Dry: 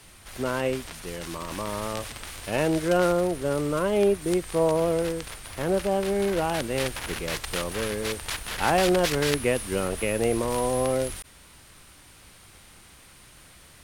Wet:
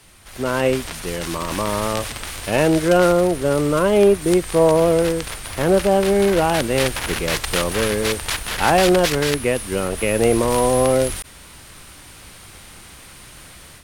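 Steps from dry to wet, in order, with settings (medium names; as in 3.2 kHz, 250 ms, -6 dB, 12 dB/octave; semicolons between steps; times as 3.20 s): level rider gain up to 8.5 dB; in parallel at -12 dB: hard clipper -11.5 dBFS, distortion -14 dB; on the sum: trim -1 dB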